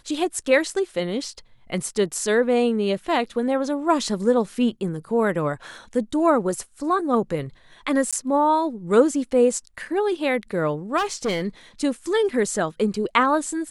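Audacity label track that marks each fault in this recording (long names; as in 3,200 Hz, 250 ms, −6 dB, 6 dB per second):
8.110000	8.130000	drop-out 16 ms
10.970000	11.470000	clipping −19.5 dBFS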